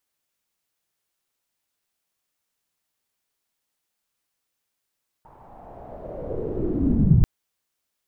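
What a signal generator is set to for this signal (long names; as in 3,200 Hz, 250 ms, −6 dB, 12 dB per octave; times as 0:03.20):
filter sweep on noise pink, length 1.99 s lowpass, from 930 Hz, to 120 Hz, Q 4.8, linear, gain ramp +38 dB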